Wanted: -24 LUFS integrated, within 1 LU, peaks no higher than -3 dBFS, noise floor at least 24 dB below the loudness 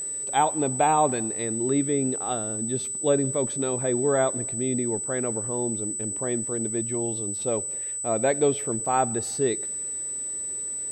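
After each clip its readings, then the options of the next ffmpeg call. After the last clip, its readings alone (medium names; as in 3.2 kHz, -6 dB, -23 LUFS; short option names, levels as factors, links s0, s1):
steady tone 8 kHz; tone level -29 dBFS; loudness -25.0 LUFS; peak level -9.5 dBFS; loudness target -24.0 LUFS
-> -af "bandreject=f=8000:w=30"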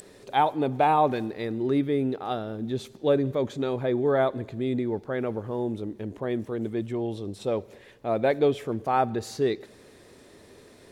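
steady tone not found; loudness -27.5 LUFS; peak level -10.0 dBFS; loudness target -24.0 LUFS
-> -af "volume=1.5"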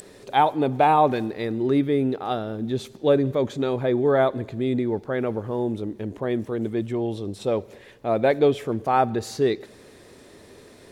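loudness -24.0 LUFS; peak level -6.5 dBFS; noise floor -49 dBFS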